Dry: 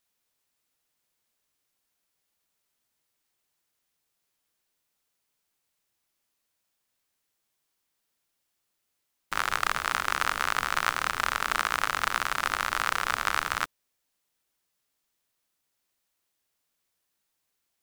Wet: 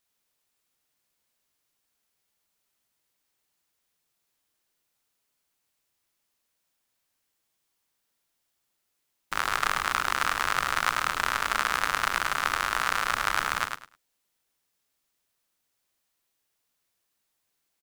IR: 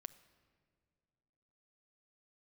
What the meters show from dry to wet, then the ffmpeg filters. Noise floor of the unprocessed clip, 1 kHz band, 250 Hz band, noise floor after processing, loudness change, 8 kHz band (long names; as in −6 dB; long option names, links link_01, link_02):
−79 dBFS, +1.0 dB, +1.0 dB, −78 dBFS, +1.0 dB, +1.0 dB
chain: -af "aecho=1:1:103|206|309:0.531|0.106|0.0212"